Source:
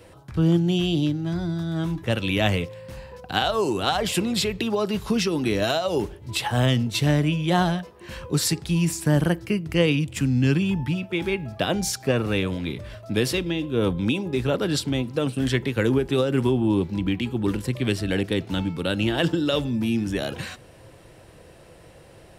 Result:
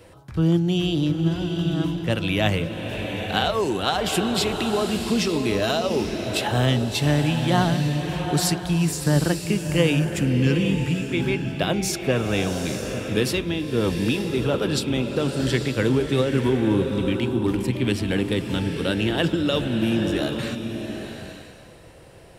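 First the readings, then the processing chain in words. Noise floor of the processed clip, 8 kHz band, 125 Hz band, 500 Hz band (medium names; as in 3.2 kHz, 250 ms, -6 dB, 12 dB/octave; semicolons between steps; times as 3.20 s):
-45 dBFS, +1.0 dB, +1.5 dB, +1.5 dB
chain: swelling reverb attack 870 ms, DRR 5 dB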